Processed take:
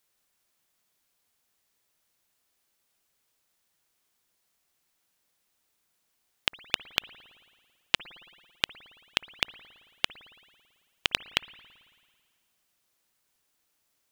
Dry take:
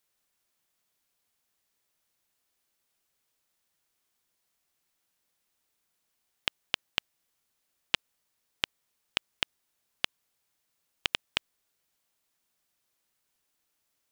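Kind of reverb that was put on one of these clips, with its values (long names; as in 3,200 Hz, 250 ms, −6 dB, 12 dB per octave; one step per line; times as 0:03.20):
spring reverb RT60 1.8 s, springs 55 ms, chirp 65 ms, DRR 17 dB
level +3 dB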